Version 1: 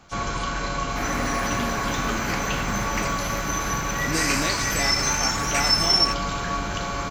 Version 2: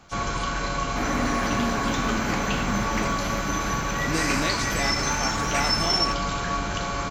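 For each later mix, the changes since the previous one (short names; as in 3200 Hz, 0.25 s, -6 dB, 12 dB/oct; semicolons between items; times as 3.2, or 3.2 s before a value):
second sound: add tilt -2 dB/oct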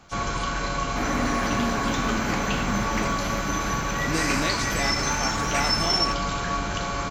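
none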